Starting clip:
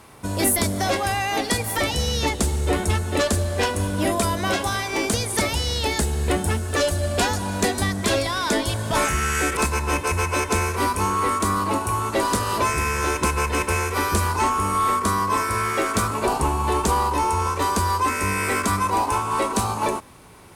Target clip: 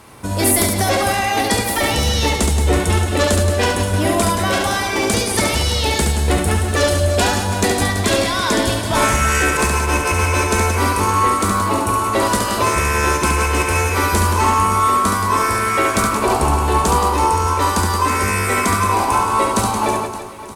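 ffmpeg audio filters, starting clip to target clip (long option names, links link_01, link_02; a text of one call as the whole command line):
ffmpeg -i in.wav -af "aecho=1:1:70|175|332.5|568.8|923.1:0.631|0.398|0.251|0.158|0.1,volume=3.5dB" out.wav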